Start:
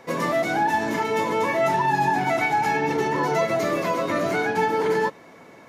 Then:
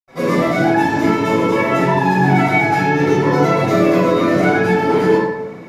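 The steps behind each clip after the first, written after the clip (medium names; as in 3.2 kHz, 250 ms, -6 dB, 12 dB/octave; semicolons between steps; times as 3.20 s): reverberation RT60 0.85 s, pre-delay 76 ms; trim +1 dB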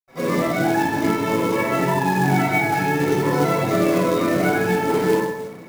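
short-mantissa float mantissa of 2-bit; trim -5 dB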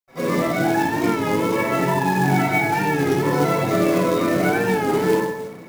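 warped record 33 1/3 rpm, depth 100 cents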